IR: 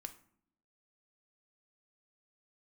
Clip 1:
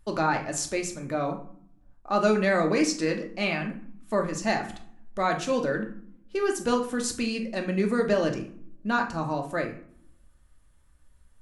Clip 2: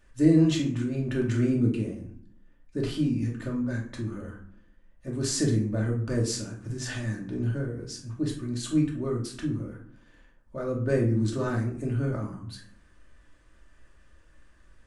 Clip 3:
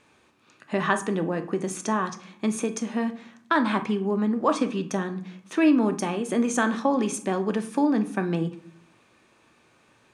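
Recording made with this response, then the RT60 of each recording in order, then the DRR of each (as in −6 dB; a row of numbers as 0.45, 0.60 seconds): 3; 0.60, 0.60, 0.65 seconds; 2.0, −2.5, 7.0 decibels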